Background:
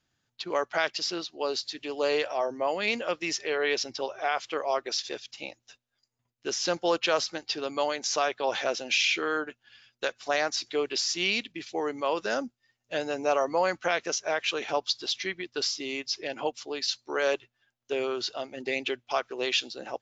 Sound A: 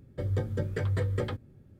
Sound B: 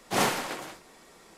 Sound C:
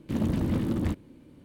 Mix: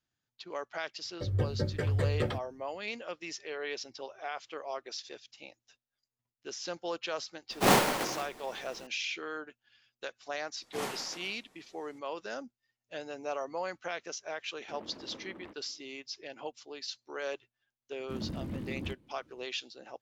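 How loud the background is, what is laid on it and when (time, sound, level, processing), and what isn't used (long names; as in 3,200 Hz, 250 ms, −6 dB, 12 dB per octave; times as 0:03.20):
background −10.5 dB
0:01.02: mix in A −0.5 dB + multiband upward and downward expander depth 70%
0:07.50: mix in B −2.5 dB + each half-wave held at its own peak
0:10.62: mix in B −13 dB
0:14.59: mix in C −11 dB + three-way crossover with the lows and the highs turned down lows −24 dB, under 350 Hz, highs −20 dB, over 2,900 Hz
0:18.00: mix in C −11.5 dB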